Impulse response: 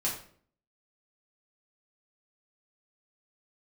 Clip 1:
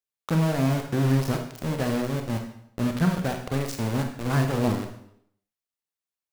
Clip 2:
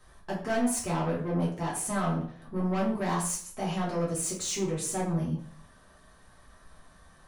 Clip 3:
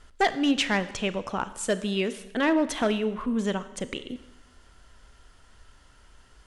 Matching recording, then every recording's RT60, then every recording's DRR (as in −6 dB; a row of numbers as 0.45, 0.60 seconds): 2; 0.75, 0.55, 1.0 seconds; 4.0, −6.0, 13.0 decibels